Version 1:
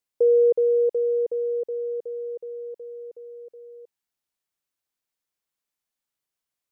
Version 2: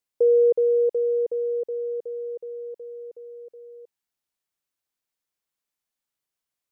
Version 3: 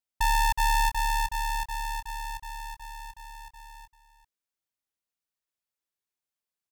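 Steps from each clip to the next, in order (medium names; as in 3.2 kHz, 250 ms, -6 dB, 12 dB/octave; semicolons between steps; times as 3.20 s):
no audible change
delay 393 ms -10.5 dB; polarity switched at an audio rate 440 Hz; trim -6 dB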